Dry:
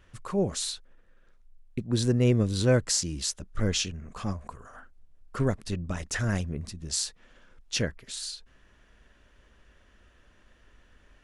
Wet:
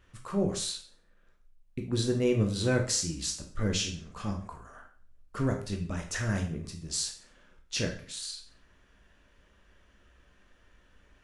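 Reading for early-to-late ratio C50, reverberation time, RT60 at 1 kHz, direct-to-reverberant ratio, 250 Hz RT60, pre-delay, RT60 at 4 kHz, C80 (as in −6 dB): 8.0 dB, 0.45 s, 0.45 s, 2.0 dB, 0.45 s, 7 ms, 0.45 s, 12.5 dB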